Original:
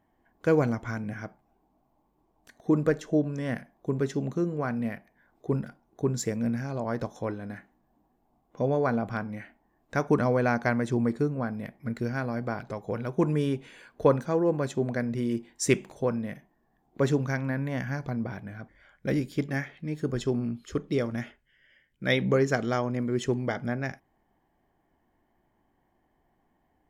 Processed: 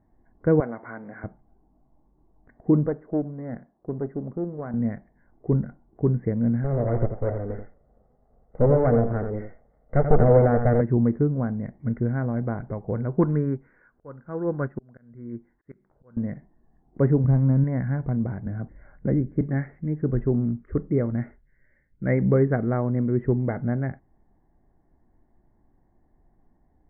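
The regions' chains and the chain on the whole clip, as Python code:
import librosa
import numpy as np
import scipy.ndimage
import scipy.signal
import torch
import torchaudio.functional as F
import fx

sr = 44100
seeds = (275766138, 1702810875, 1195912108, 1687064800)

y = fx.chain(x, sr, fx.law_mismatch(coded='mu'),
    fx.highpass(hz=470.0, slope=12), at=(0.6, 1.24))
y = fx.chain(y, sr, fx.halfwave_gain(db=-7.0),
    fx.highpass(hz=270.0, slope=6),
    fx.peak_eq(hz=3400.0, db=-13.5, octaves=1.7), at=(2.86, 4.74))
y = fx.chain(y, sr, fx.lower_of_two(delay_ms=1.5),
    fx.peak_eq(hz=450.0, db=9.5, octaves=1.1),
    fx.echo_single(ms=86, db=-8.0), at=(6.64, 10.81))
y = fx.chain(y, sr, fx.peak_eq(hz=1400.0, db=11.5, octaves=0.79),
    fx.auto_swell(attack_ms=630.0),
    fx.upward_expand(threshold_db=-41.0, expansion=1.5), at=(13.19, 16.17))
y = fx.chain(y, sr, fx.median_filter(points=25),
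    fx.lowpass(hz=3300.0, slope=12),
    fx.low_shelf(hz=180.0, db=8.5), at=(17.24, 17.64))
y = fx.chain(y, sr, fx.high_shelf(hz=2400.0, db=-11.5),
    fx.band_squash(depth_pct=40), at=(18.46, 19.41))
y = scipy.signal.sosfilt(scipy.signal.cheby1(6, 1.0, 2100.0, 'lowpass', fs=sr, output='sos'), y)
y = fx.tilt_eq(y, sr, slope=-3.5)
y = F.gain(torch.from_numpy(y), -1.5).numpy()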